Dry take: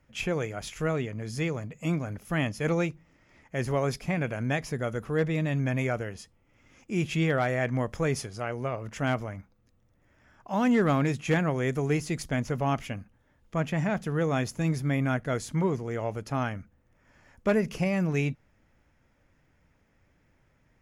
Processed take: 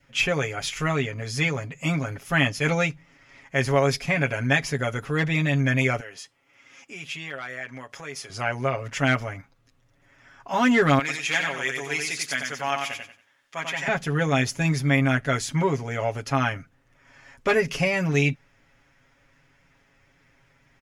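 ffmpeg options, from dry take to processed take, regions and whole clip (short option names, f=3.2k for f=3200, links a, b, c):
-filter_complex "[0:a]asettb=1/sr,asplit=3[a][b][c];[a]atrim=end=6.004[d];[b]atrim=start=6:end=8.3,asetpts=PTS-STARTPTS,afade=t=in:d=0.004:c=qsin,afade=t=out:st=2.296:d=0.004:c=qsin,highpass=f=440:p=1,acompressor=threshold=-48dB:ratio=2:attack=3.2:release=140:knee=1:detection=peak[e];[c]atrim=start=8.296[f];[d][e]acrossfade=d=0.004:c1=hsin:c2=qsin[g];[g][f]acrossfade=d=0.004:c1=qsin:c2=hsin,asettb=1/sr,asplit=3[h][i][j];[h]atrim=end=10.994[k];[i]atrim=start=10.99:end=13.88,asetpts=PTS-STARTPTS,afade=t=in:d=0.004:c=qsin,afade=t=out:st=2.886:d=0.004:c=qsin,highpass=f=1.5k:p=1,aecho=1:1:92|184|276|368:0.596|0.161|0.0434|0.0117,atrim=end_sample=127449[l];[j]atrim=start=13.876[m];[k][l]acrossfade=d=0.004:c1=hsin:c2=qsin[n];[n][m]acrossfade=d=0.004:c1=qsin:c2=hsin,equalizer=f=3.1k:w=0.31:g=9.5,aecho=1:1:7.3:0.79,adynamicequalizer=threshold=0.00794:dfrequency=1100:dqfactor=3.4:tfrequency=1100:tqfactor=3.4:attack=5:release=100:ratio=0.375:range=2.5:mode=cutabove:tftype=bell"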